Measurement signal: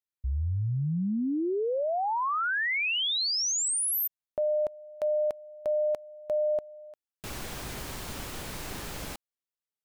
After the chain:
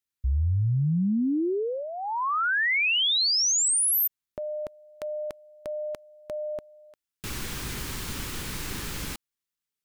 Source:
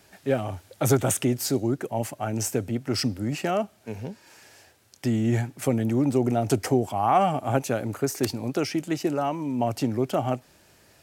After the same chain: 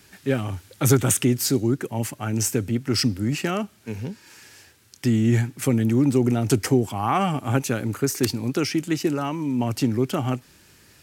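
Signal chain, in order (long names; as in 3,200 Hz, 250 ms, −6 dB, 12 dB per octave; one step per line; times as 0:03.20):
parametric band 660 Hz −12 dB 0.85 octaves
level +5 dB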